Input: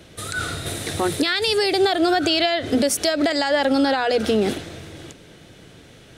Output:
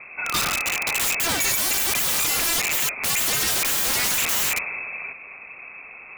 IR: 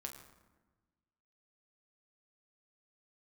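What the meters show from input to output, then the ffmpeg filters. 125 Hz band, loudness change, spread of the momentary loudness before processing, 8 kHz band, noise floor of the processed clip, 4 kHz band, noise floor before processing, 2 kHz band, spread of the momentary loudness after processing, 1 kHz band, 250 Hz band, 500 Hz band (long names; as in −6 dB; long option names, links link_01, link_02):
−6.5 dB, 0.0 dB, 10 LU, +9.5 dB, −42 dBFS, −1.5 dB, −47 dBFS, +1.5 dB, 18 LU, −5.5 dB, −17.0 dB, −16.0 dB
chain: -af "lowpass=frequency=2300:width_type=q:width=0.5098,lowpass=frequency=2300:width_type=q:width=0.6013,lowpass=frequency=2300:width_type=q:width=0.9,lowpass=frequency=2300:width_type=q:width=2.563,afreqshift=-2700,aeval=exprs='(mod(15*val(0)+1,2)-1)/15':channel_layout=same,volume=6dB"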